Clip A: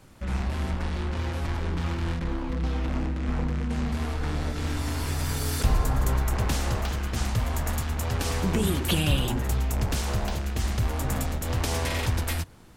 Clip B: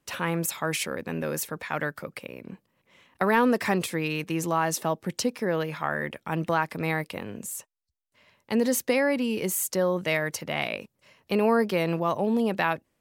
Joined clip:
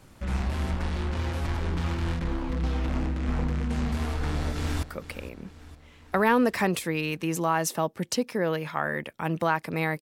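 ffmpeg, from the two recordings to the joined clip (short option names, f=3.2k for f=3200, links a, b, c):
-filter_complex "[0:a]apad=whole_dur=10.01,atrim=end=10.01,atrim=end=4.832[a];[1:a]atrim=start=1.898:end=7.08[b];[a][b]acrossfade=d=0.004:c1=hsin:c2=hsin,asplit=2[c][d];[d]afade=t=in:st=4.2:d=0.01,afade=t=out:st=4.83:d=0.01,aecho=0:1:460|920|1380|1840|2300|2760:0.16788|0.100728|0.0604369|0.0362622|0.0217573|0.0130544[e];[c][e]amix=inputs=2:normalize=0"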